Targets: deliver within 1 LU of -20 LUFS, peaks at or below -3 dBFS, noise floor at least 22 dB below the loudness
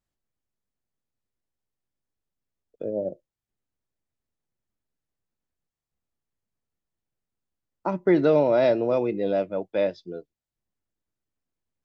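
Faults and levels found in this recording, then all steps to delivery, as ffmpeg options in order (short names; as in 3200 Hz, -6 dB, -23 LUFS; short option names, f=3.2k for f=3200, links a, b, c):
loudness -24.0 LUFS; peak -9.0 dBFS; loudness target -20.0 LUFS
-> -af "volume=4dB"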